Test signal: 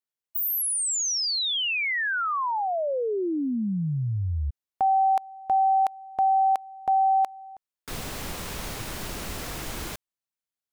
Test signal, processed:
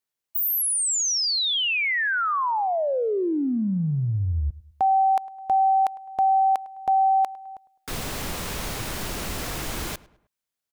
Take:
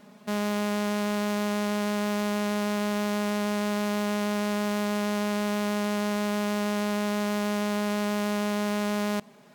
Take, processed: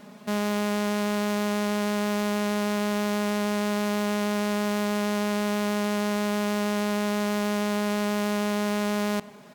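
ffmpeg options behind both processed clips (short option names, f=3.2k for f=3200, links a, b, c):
-filter_complex "[0:a]asplit=2[a][b];[b]acompressor=threshold=-32dB:ratio=6:attack=0.22:release=22:knee=6:detection=peak,volume=-2dB[c];[a][c]amix=inputs=2:normalize=0,asplit=2[d][e];[e]adelay=104,lowpass=f=2.4k:p=1,volume=-19.5dB,asplit=2[f][g];[g]adelay=104,lowpass=f=2.4k:p=1,volume=0.43,asplit=2[h][i];[i]adelay=104,lowpass=f=2.4k:p=1,volume=0.43[j];[d][f][h][j]amix=inputs=4:normalize=0"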